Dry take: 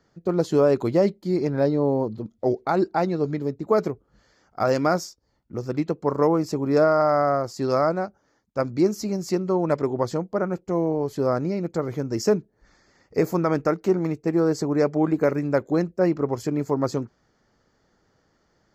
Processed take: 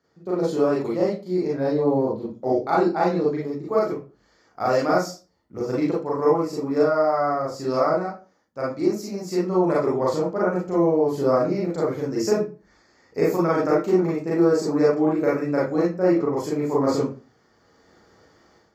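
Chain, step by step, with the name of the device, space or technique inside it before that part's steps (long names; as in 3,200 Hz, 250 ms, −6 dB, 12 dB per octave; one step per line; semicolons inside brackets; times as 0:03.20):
far laptop microphone (convolution reverb RT60 0.35 s, pre-delay 32 ms, DRR −6.5 dB; high-pass filter 140 Hz 6 dB per octave; automatic gain control)
level −7.5 dB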